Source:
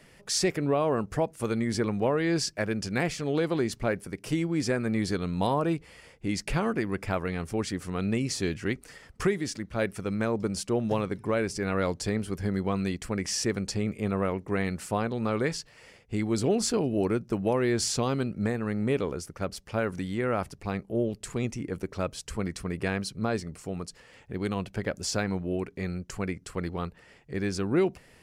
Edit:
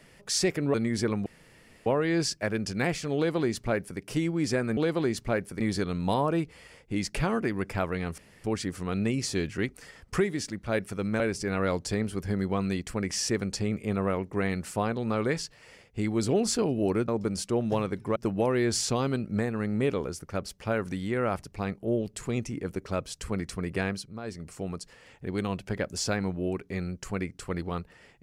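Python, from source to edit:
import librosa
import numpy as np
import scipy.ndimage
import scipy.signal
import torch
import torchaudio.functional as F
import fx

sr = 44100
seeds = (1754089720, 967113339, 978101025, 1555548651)

y = fx.edit(x, sr, fx.cut(start_s=0.74, length_s=0.76),
    fx.insert_room_tone(at_s=2.02, length_s=0.6),
    fx.duplicate(start_s=3.32, length_s=0.83, to_s=4.93),
    fx.insert_room_tone(at_s=7.51, length_s=0.26),
    fx.move(start_s=10.27, length_s=1.08, to_s=17.23),
    fx.fade_down_up(start_s=22.95, length_s=0.62, db=-11.0, fade_s=0.28), tone=tone)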